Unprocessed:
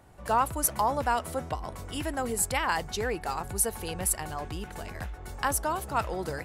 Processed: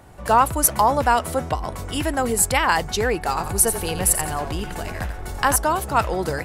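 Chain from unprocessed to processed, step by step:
0:03.28–0:05.56: echo with shifted repeats 86 ms, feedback 30%, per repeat −38 Hz, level −9 dB
level +9 dB

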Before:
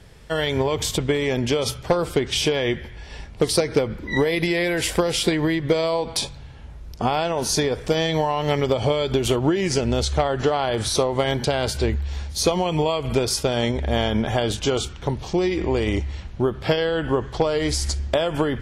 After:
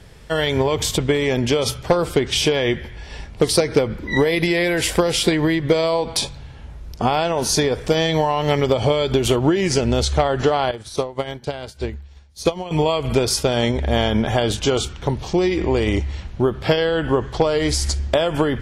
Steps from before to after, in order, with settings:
0:10.71–0:12.71: expander for the loud parts 2.5 to 1, over −31 dBFS
level +3 dB

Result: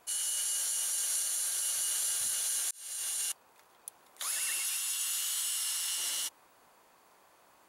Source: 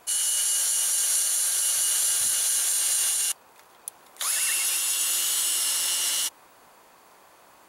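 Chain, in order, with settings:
0:02.71–0:03.20: fade in
0:04.61–0:05.98: high-pass filter 900 Hz 12 dB per octave
level −8.5 dB

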